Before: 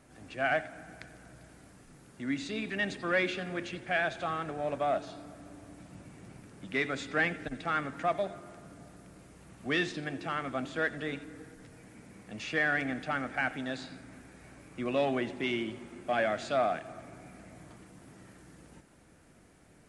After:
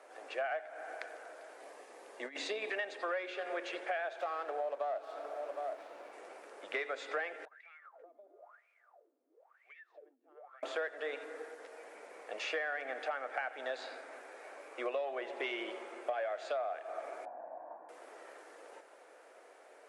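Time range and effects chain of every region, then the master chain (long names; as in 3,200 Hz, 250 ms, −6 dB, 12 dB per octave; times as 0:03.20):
0:01.60–0:02.72: low-shelf EQ 150 Hz +7.5 dB + compressor whose output falls as the input rises −34 dBFS, ratio −0.5 + notch filter 1,400 Hz, Q 6.4
0:04.18–0:06.13: single-tap delay 762 ms −17.5 dB + windowed peak hold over 5 samples
0:07.45–0:10.63: LFO wah 1 Hz 240–2,400 Hz, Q 20 + downward compressor 16 to 1, threshold −58 dBFS + high-shelf EQ 5,100 Hz +11 dB
0:17.25–0:17.89: low-pass filter 1,100 Hz 24 dB per octave + comb filter 1.2 ms, depth 79%
whole clip: Butterworth high-pass 470 Hz 36 dB per octave; spectral tilt −3.5 dB per octave; downward compressor 10 to 1, threshold −41 dBFS; level +7 dB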